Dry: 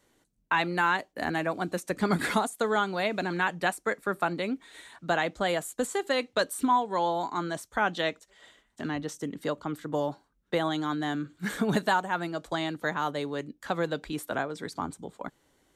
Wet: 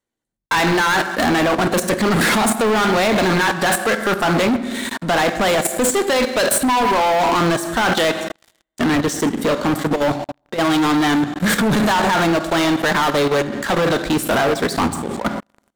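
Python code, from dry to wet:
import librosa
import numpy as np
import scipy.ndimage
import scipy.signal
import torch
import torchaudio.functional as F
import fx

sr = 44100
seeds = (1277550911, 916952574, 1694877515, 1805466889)

y = fx.leveller(x, sr, passes=1)
y = fx.over_compress(y, sr, threshold_db=-28.0, ratio=-0.5, at=(9.91, 10.61))
y = fx.rev_fdn(y, sr, rt60_s=0.97, lf_ratio=1.05, hf_ratio=0.75, size_ms=26.0, drr_db=8.5)
y = fx.level_steps(y, sr, step_db=16)
y = fx.leveller(y, sr, passes=5)
y = F.gain(torch.from_numpy(y), 5.5).numpy()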